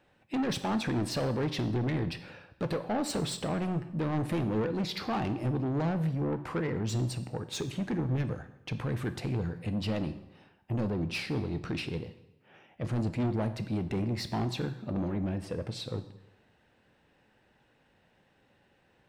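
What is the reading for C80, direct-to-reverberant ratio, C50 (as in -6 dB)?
15.0 dB, 10.0 dB, 13.0 dB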